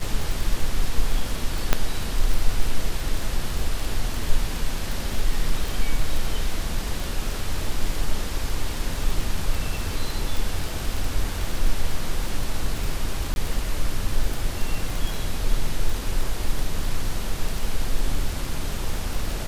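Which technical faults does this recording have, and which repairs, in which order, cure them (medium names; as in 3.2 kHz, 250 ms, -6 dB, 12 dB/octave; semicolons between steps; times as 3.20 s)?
crackle 20 per s -23 dBFS
1.73 s: pop -3 dBFS
13.34–13.36 s: dropout 21 ms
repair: de-click; interpolate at 13.34 s, 21 ms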